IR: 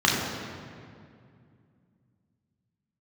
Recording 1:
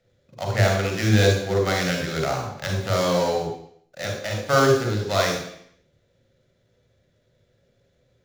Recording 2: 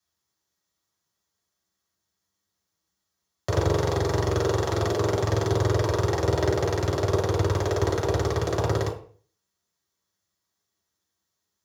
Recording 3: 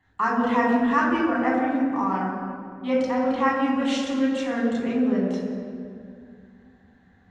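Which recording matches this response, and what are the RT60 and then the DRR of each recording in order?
3; 0.65 s, 0.45 s, 2.3 s; 1.0 dB, -5.0 dB, -4.0 dB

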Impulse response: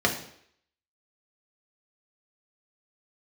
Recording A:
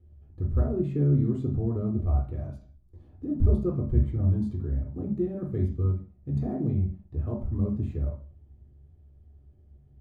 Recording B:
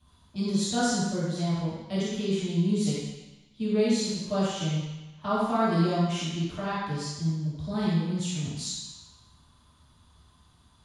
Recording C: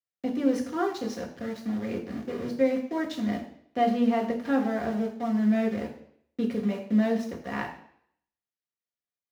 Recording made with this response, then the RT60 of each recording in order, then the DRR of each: C; 0.40 s, 1.1 s, 0.65 s; -2.0 dB, -10.5 dB, 0.0 dB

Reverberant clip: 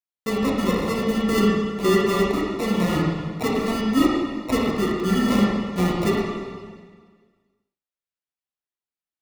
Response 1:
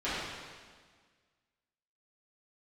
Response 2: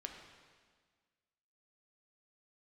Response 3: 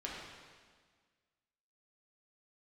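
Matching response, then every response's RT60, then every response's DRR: 3; 1.6 s, 1.6 s, 1.6 s; -14.5 dB, 2.0 dB, -5.0 dB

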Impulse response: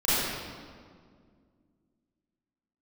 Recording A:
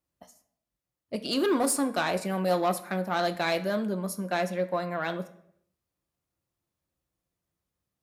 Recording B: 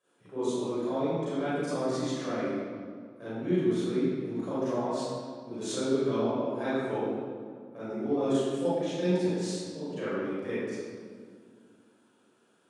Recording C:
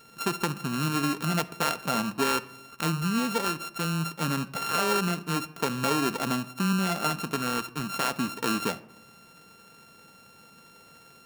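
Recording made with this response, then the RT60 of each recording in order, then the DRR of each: B; 0.70 s, 2.0 s, 1.0 s; 8.5 dB, -13.5 dB, 12.0 dB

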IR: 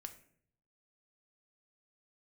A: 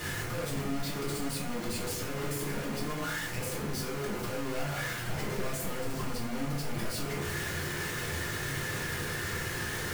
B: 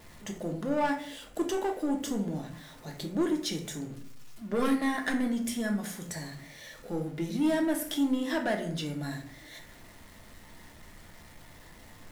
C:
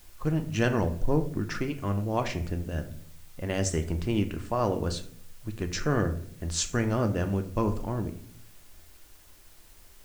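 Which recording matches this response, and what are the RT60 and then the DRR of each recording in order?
C; 0.60 s, 0.60 s, 0.60 s; -6.5 dB, 2.0 dB, 6.5 dB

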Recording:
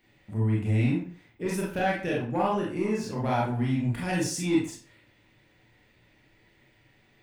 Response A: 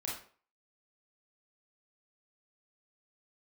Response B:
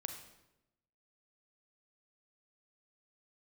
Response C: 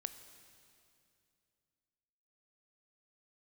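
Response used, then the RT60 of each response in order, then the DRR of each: A; 0.45 s, 0.95 s, 2.6 s; -5.0 dB, 5.0 dB, 10.0 dB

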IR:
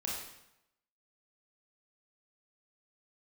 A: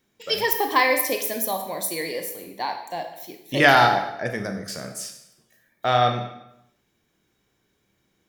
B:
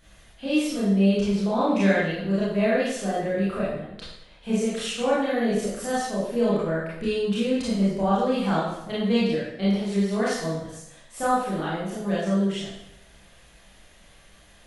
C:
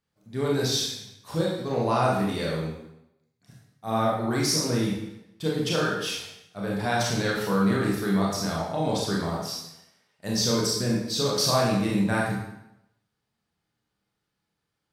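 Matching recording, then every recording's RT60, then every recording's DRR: C; 0.85 s, 0.85 s, 0.85 s; 4.5 dB, -10.0 dB, -4.5 dB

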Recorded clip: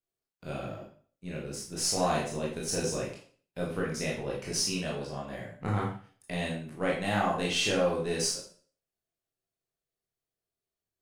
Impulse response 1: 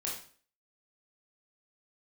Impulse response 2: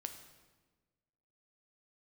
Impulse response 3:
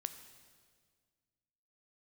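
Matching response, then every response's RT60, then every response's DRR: 1; 0.45 s, 1.3 s, 1.8 s; -4.0 dB, 6.5 dB, 9.5 dB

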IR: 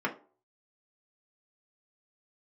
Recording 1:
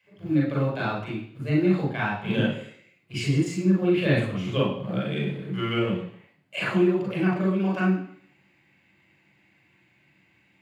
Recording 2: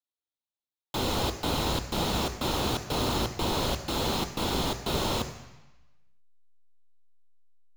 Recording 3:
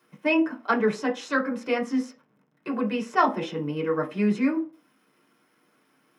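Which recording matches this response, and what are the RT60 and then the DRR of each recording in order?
3; 0.60 s, 1.1 s, 0.45 s; -5.0 dB, 7.5 dB, -1.0 dB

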